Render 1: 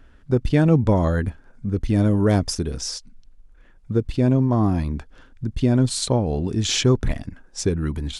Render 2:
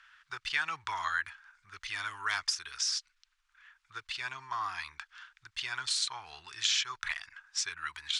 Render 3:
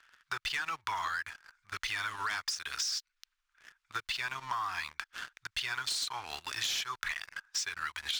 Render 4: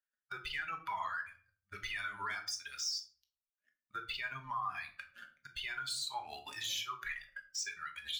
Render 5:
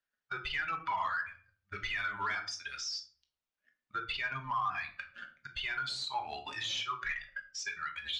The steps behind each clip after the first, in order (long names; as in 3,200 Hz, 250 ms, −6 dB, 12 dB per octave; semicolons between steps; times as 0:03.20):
inverse Chebyshev high-pass filter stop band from 600 Hz, stop band 40 dB; downward compressor 6 to 1, threshold −30 dBFS, peak gain reduction 10.5 dB; low-pass filter 6,000 Hz 12 dB per octave; level +4.5 dB
leveller curve on the samples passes 3; downward compressor 6 to 1, threshold −33 dBFS, peak gain reduction 13 dB
spectral dynamics exaggerated over time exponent 2; brickwall limiter −34 dBFS, peak gain reduction 8 dB; convolution reverb RT60 0.45 s, pre-delay 5 ms, DRR 3.5 dB; level +2 dB
in parallel at −5 dB: hard clipping −39.5 dBFS, distortion −9 dB; on the sum: high-frequency loss of the air 130 metres; level +3 dB